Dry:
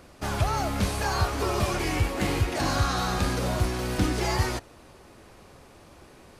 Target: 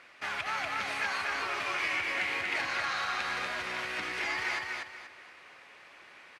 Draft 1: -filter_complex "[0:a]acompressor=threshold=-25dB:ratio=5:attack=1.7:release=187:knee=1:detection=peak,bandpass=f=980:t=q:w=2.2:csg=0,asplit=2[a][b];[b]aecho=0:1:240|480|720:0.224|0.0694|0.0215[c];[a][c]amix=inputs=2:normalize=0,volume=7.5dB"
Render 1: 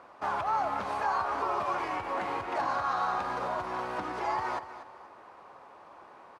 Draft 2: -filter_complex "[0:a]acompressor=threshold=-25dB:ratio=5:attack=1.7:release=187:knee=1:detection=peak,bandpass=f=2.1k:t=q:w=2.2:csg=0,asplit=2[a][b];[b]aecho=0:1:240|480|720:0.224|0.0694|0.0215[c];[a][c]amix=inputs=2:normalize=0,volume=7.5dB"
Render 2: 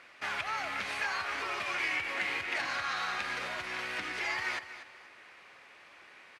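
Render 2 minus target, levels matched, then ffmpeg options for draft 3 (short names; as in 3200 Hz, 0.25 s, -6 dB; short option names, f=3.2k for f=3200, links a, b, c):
echo-to-direct -10 dB
-filter_complex "[0:a]acompressor=threshold=-25dB:ratio=5:attack=1.7:release=187:knee=1:detection=peak,bandpass=f=2.1k:t=q:w=2.2:csg=0,asplit=2[a][b];[b]aecho=0:1:240|480|720|960:0.708|0.219|0.068|0.0211[c];[a][c]amix=inputs=2:normalize=0,volume=7.5dB"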